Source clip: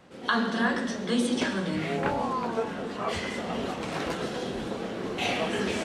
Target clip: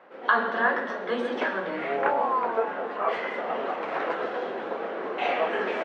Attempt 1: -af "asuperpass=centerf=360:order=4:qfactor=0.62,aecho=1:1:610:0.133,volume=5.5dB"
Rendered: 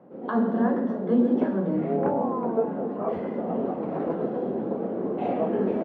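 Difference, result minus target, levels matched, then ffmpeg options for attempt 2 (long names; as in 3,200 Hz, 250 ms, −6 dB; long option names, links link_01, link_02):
1,000 Hz band −6.5 dB
-af "asuperpass=centerf=940:order=4:qfactor=0.62,aecho=1:1:610:0.133,volume=5.5dB"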